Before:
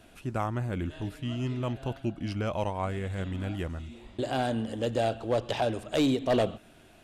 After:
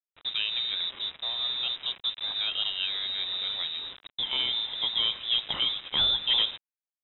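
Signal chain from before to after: bit crusher 7-bit; frequency inversion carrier 3.8 kHz

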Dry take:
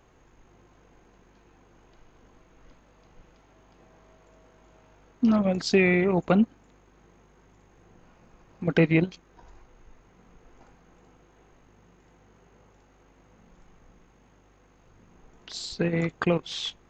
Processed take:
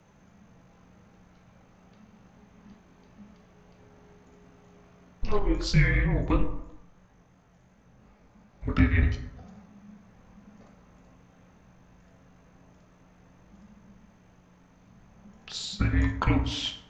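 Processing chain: plate-style reverb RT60 0.87 s, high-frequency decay 0.5×, DRR 4 dB; frequency shift -230 Hz; 5.39–9.03 s: chorus 2.9 Hz, delay 19.5 ms, depth 5.2 ms

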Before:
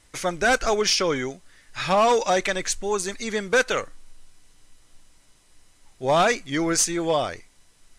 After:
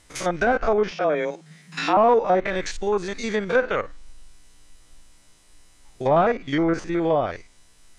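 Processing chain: spectrogram pixelated in time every 50 ms; low-pass that closes with the level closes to 1.3 kHz, closed at -19.5 dBFS; 0.91–1.97 s: frequency shift +150 Hz; trim +3.5 dB

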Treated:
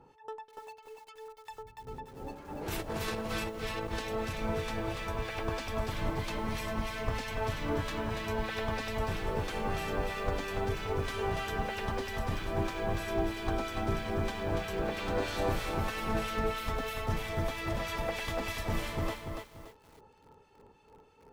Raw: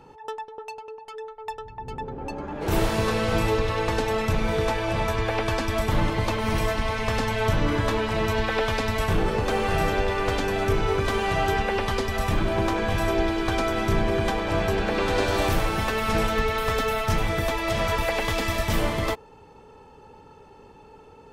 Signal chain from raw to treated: harmonic tremolo 3.1 Hz, depth 70%, crossover 1.5 kHz; 2.66–3.99 s: compressor with a negative ratio -28 dBFS, ratio -0.5; bit-crushed delay 287 ms, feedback 35%, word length 8-bit, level -5 dB; trim -7.5 dB

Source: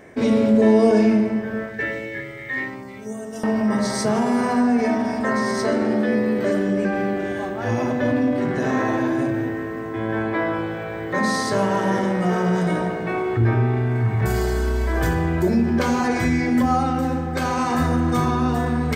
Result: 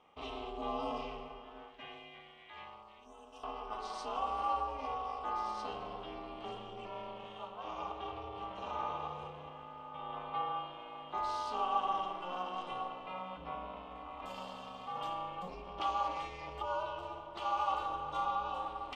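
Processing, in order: two resonant band-passes 1.7 kHz, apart 1.6 oct; ring modulator 180 Hz; trim -1 dB

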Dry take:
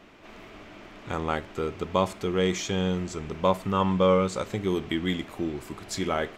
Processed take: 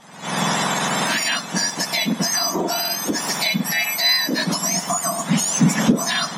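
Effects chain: spectrum inverted on a logarithmic axis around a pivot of 1.5 kHz; recorder AGC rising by 57 dB/s; low-pass 8.7 kHz 12 dB/octave; in parallel at -2.5 dB: peak limiter -22.5 dBFS, peak gain reduction 10 dB; on the sum: resonant low shelf 270 Hz +6 dB, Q 3; trim +3.5 dB

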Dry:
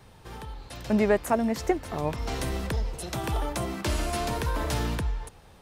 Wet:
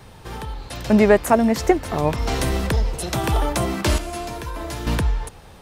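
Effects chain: 3.98–4.87 s: feedback comb 340 Hz, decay 0.16 s, harmonics all, mix 80%; trim +8.5 dB

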